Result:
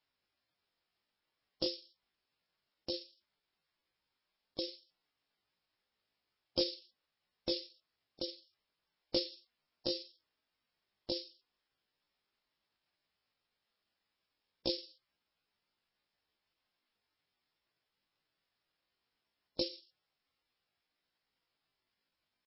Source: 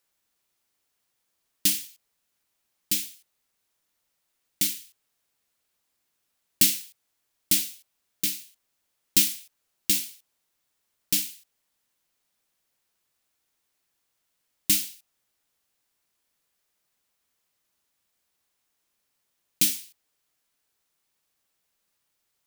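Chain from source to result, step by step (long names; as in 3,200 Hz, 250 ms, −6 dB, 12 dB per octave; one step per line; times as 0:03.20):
pitch shifter +9.5 semitones
level −1.5 dB
MP3 16 kbit/s 16,000 Hz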